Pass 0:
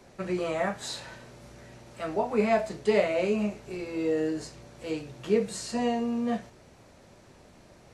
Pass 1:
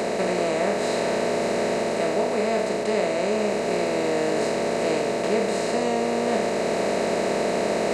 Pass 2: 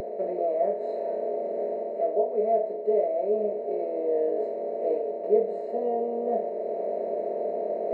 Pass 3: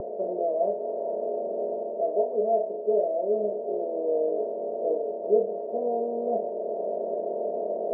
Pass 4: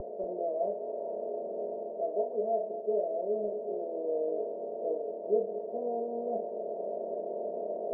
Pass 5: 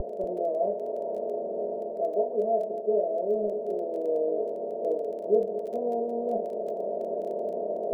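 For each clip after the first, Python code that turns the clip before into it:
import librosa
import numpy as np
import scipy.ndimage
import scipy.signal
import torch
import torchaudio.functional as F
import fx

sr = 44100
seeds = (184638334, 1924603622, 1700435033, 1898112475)

y1 = fx.bin_compress(x, sr, power=0.2)
y1 = fx.rider(y1, sr, range_db=10, speed_s=0.5)
y1 = F.gain(torch.from_numpy(y1), -3.5).numpy()
y2 = fx.highpass(y1, sr, hz=240.0, slope=6)
y2 = fx.spectral_expand(y2, sr, expansion=2.5)
y3 = scipy.signal.sosfilt(scipy.signal.butter(4, 1000.0, 'lowpass', fs=sr, output='sos'), y2)
y3 = fx.end_taper(y3, sr, db_per_s=160.0)
y4 = fx.low_shelf(y3, sr, hz=81.0, db=10.0)
y4 = y4 + 10.0 ** (-14.5 / 20.0) * np.pad(y4, (int(235 * sr / 1000.0), 0))[:len(y4)]
y4 = F.gain(torch.from_numpy(y4), -6.5).numpy()
y5 = fx.low_shelf(y4, sr, hz=130.0, db=9.5)
y5 = fx.dmg_crackle(y5, sr, seeds[0], per_s=13.0, level_db=-43.0)
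y5 = F.gain(torch.from_numpy(y5), 4.0).numpy()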